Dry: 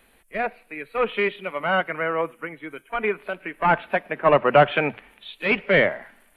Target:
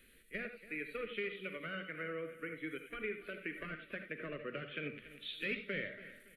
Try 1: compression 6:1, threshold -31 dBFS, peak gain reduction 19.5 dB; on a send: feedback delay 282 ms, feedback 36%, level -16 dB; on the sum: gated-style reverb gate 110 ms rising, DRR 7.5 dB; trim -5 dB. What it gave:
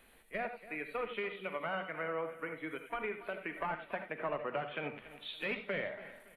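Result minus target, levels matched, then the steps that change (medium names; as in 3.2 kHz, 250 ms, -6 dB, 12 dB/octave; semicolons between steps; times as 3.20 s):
1 kHz band +9.0 dB
add after compression: Butterworth band-stop 850 Hz, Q 0.8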